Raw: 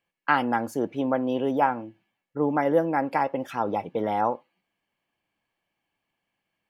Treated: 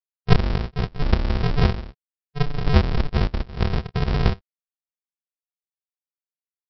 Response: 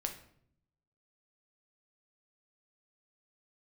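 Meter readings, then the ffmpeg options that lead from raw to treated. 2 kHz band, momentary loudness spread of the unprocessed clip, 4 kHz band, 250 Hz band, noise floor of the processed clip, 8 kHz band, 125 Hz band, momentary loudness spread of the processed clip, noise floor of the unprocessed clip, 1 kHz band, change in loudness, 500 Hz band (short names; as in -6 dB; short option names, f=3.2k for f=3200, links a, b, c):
-1.5 dB, 6 LU, +11.0 dB, 0.0 dB, under -85 dBFS, n/a, +18.0 dB, 8 LU, -82 dBFS, -7.0 dB, +2.5 dB, -4.0 dB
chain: -af "afftfilt=real='re*gte(hypot(re,im),0.00891)':imag='im*gte(hypot(re,im),0.00891)':win_size=1024:overlap=0.75,aresample=11025,acrusher=samples=38:mix=1:aa=0.000001,aresample=44100,volume=5.5dB"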